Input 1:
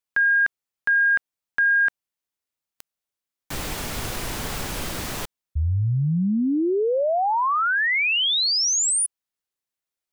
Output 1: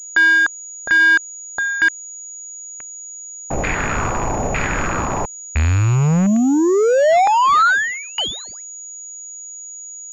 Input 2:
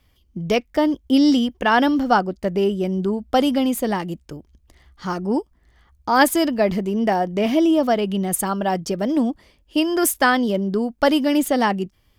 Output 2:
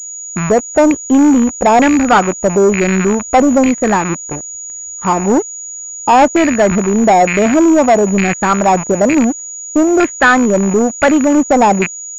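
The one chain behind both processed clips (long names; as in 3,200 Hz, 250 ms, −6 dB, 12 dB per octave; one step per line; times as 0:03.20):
loose part that buzzes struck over −34 dBFS, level −15 dBFS
auto-filter low-pass saw down 1.1 Hz 620–2,200 Hz
leveller curve on the samples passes 3
switching amplifier with a slow clock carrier 6,800 Hz
level −2 dB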